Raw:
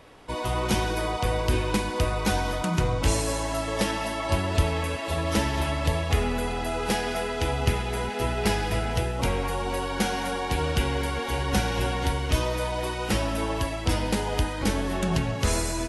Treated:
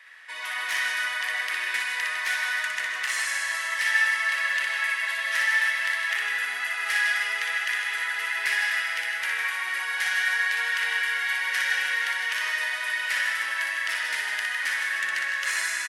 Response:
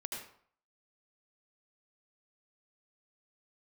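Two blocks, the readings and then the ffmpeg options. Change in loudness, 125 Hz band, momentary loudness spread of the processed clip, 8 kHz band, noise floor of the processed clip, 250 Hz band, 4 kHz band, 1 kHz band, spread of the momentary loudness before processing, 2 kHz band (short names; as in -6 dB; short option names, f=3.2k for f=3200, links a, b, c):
+2.0 dB, under -40 dB, 4 LU, -1.0 dB, -32 dBFS, under -30 dB, +2.0 dB, -6.0 dB, 3 LU, +11.5 dB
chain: -filter_complex "[0:a]asoftclip=type=hard:threshold=-19.5dB,highpass=f=1.8k:t=q:w=8.2,aecho=1:1:60|156|309.6|555.4|948.6:0.631|0.398|0.251|0.158|0.1,asplit=2[a][b];[1:a]atrim=start_sample=2205,asetrate=26019,aresample=44100[c];[b][c]afir=irnorm=-1:irlink=0,volume=-1dB[d];[a][d]amix=inputs=2:normalize=0,volume=-8.5dB"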